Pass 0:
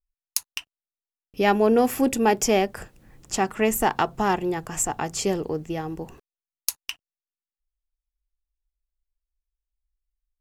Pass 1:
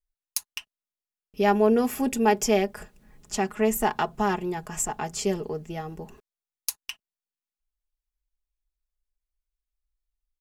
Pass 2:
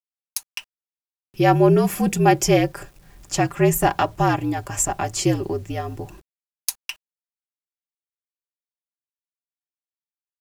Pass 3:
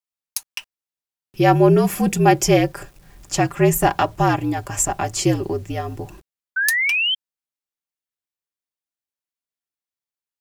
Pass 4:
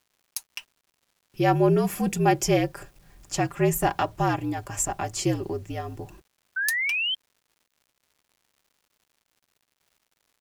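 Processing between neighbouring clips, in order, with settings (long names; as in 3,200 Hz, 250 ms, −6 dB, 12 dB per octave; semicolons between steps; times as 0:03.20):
comb filter 4.8 ms, depth 59%; level −4.5 dB
automatic gain control gain up to 7.5 dB; frequency shifter −58 Hz; bit reduction 9 bits; level −1 dB
sound drawn into the spectrogram rise, 0:06.56–0:07.15, 1,500–3,200 Hz −21 dBFS; level +1.5 dB
surface crackle 230 per second −46 dBFS; level −6.5 dB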